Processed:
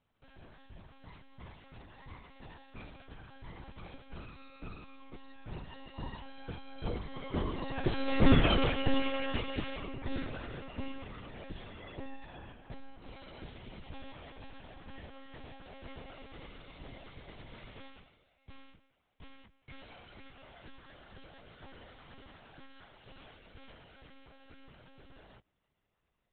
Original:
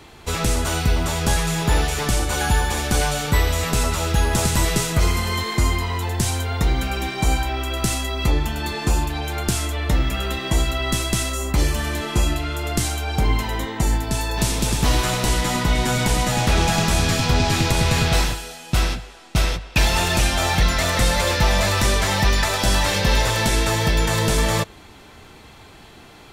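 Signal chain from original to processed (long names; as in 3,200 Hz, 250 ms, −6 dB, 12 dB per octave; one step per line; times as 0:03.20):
source passing by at 0:08.40, 59 m/s, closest 16 metres
dynamic equaliser 410 Hz, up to +7 dB, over −52 dBFS, Q 1.2
one-pitch LPC vocoder at 8 kHz 270 Hz
level −2.5 dB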